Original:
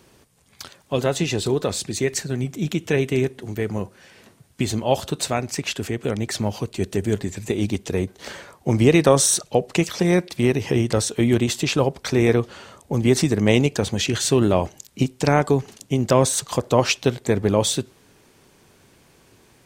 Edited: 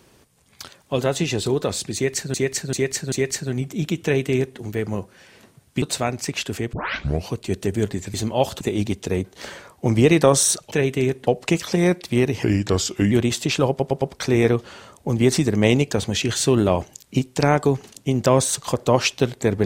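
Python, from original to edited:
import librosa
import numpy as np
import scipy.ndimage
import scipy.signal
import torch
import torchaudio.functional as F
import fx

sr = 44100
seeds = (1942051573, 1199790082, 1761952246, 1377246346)

y = fx.edit(x, sr, fx.repeat(start_s=1.95, length_s=0.39, count=4),
    fx.duplicate(start_s=2.86, length_s=0.56, to_s=9.54),
    fx.move(start_s=4.65, length_s=0.47, to_s=7.44),
    fx.tape_start(start_s=6.03, length_s=0.56),
    fx.speed_span(start_s=10.7, length_s=0.59, speed=0.86),
    fx.stutter(start_s=11.86, slice_s=0.11, count=4), tone=tone)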